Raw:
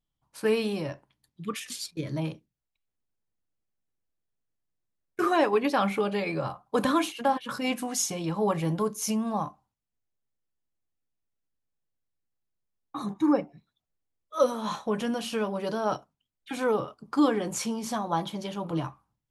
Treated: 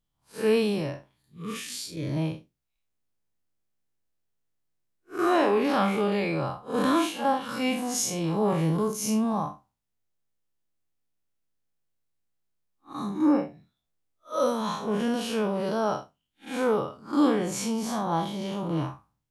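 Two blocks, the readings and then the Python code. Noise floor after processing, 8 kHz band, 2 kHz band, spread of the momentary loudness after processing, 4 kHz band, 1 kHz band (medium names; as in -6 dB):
-80 dBFS, +0.5 dB, +0.5 dB, 12 LU, +1.0 dB, +1.0 dB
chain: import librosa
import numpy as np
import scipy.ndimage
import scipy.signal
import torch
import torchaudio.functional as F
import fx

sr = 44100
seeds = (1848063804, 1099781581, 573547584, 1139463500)

y = fx.spec_blur(x, sr, span_ms=114.0)
y = F.gain(torch.from_numpy(y), 4.5).numpy()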